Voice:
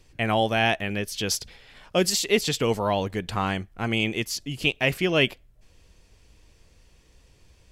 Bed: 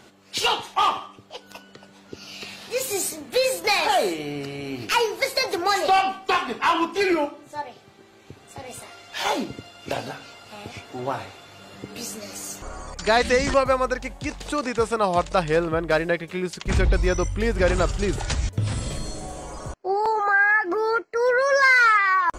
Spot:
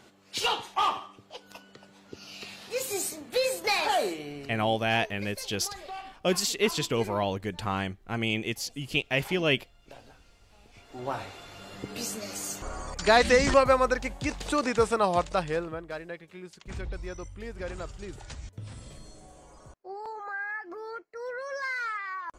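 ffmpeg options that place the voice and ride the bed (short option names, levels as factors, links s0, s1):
-filter_complex "[0:a]adelay=4300,volume=0.631[s0];[1:a]volume=5.62,afade=t=out:st=3.97:d=0.89:silence=0.158489,afade=t=in:st=10.71:d=0.69:silence=0.0944061,afade=t=out:st=14.77:d=1.1:silence=0.16788[s1];[s0][s1]amix=inputs=2:normalize=0"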